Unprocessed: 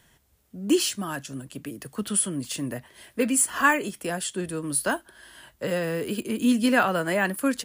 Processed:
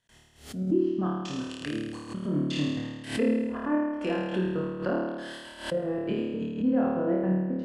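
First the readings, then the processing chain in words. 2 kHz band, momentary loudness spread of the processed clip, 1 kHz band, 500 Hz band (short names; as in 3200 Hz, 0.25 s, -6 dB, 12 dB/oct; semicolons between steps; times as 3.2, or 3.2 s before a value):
-12.0 dB, 9 LU, -8.5 dB, -1.0 dB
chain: LPF 9500 Hz 12 dB/oct; bell 4200 Hz +4 dB 1.7 oct; treble ducked by the level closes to 460 Hz, closed at -22 dBFS; compressor 2:1, threshold -28 dBFS, peak gain reduction 6.5 dB; step gate ".x..xxx.xx" 168 bpm -60 dB; on a send: flutter echo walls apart 4.6 m, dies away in 1.3 s; on the sum: backwards sustainer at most 120 dB/s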